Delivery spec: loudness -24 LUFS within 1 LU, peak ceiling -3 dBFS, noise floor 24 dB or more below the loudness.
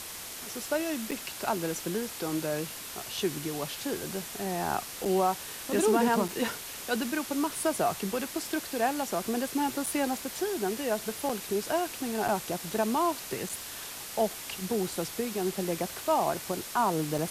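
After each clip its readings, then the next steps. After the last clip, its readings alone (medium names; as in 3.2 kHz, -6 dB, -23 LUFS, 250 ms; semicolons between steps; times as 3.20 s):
dropouts 8; longest dropout 5.3 ms; noise floor -41 dBFS; noise floor target -55 dBFS; loudness -31.0 LUFS; peak level -13.0 dBFS; loudness target -24.0 LUFS
-> interpolate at 1.11/5.05/6.28/9.86/11.29/12.28/13.49/17.18 s, 5.3 ms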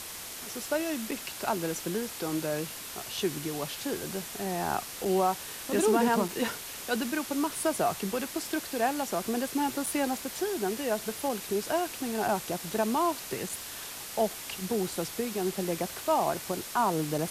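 dropouts 0; noise floor -41 dBFS; noise floor target -55 dBFS
-> noise print and reduce 14 dB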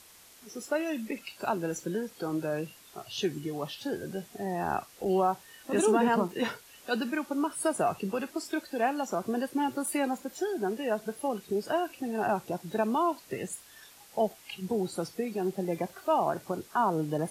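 noise floor -55 dBFS; noise floor target -56 dBFS
-> noise print and reduce 6 dB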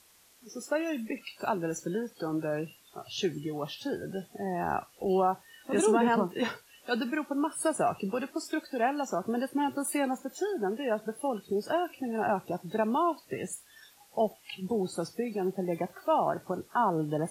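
noise floor -60 dBFS; loudness -31.5 LUFS; peak level -13.5 dBFS; loudness target -24.0 LUFS
-> trim +7.5 dB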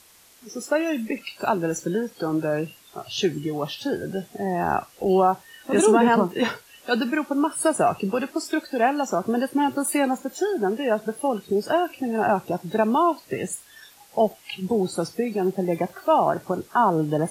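loudness -24.0 LUFS; peak level -6.0 dBFS; noise floor -53 dBFS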